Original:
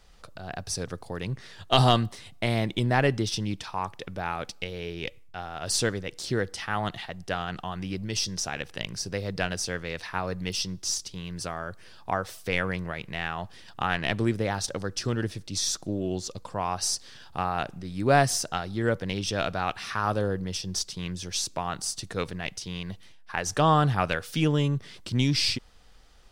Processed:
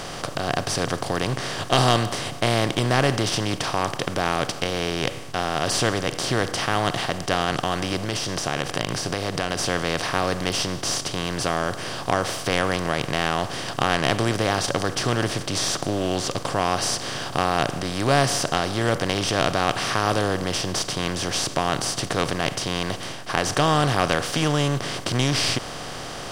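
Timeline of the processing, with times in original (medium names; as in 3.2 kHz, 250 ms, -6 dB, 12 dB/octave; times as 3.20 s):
7.97–9.59 s: compression, threshold -33 dBFS
whole clip: spectral levelling over time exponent 0.4; trim -2.5 dB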